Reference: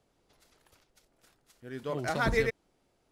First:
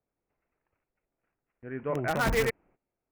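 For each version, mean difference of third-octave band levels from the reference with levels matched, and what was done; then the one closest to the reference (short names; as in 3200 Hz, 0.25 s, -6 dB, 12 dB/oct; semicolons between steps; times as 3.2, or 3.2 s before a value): 5.5 dB: steep low-pass 2600 Hz 72 dB/oct; gate -60 dBFS, range -18 dB; in parallel at -6 dB: wrapped overs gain 23.5 dB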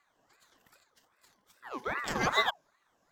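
8.0 dB: moving spectral ripple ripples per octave 1.1, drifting -2.2 Hz, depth 10 dB; ripple EQ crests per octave 0.78, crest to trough 12 dB; ring modulator with a swept carrier 1100 Hz, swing 45%, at 2.5 Hz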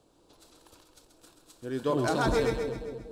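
3.5 dB: thirty-one-band EQ 315 Hz +10 dB, 500 Hz +4 dB, 1000 Hz +5 dB, 2000 Hz -11 dB, 4000 Hz +5 dB, 8000 Hz +6 dB; limiter -23.5 dBFS, peak gain reduction 9.5 dB; on a send: split-band echo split 590 Hz, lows 0.241 s, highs 0.132 s, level -6.5 dB; on the sum: gain +5 dB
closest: third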